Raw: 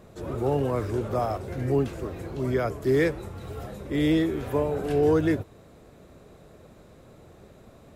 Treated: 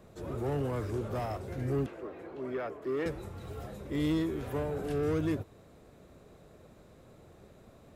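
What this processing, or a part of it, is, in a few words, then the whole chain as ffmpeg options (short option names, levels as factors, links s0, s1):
one-band saturation: -filter_complex "[0:a]acrossover=split=290|3800[s0][s1][s2];[s1]asoftclip=type=tanh:threshold=0.0422[s3];[s0][s3][s2]amix=inputs=3:normalize=0,asettb=1/sr,asplit=3[s4][s5][s6];[s4]atrim=end=1.864[s7];[s5]atrim=start=1.86:end=3.06,asetpts=PTS-STARTPTS,afade=t=in:d=0.004:c=qsin,afade=t=out:st=1.196:d=0.004:c=qsin,acrossover=split=250 3000:gain=0.112 1 0.158[s8][s9][s10];[s8][s9][s10]amix=inputs=3:normalize=0[s11];[s6]atrim=start=3.056[s12];[s7][s11]acrossfade=d=0.004:c1=hsin:c2=qsin[s13];[s13][s12]acrossfade=d=0.004:c1=qsin:c2=hsin,volume=0.562"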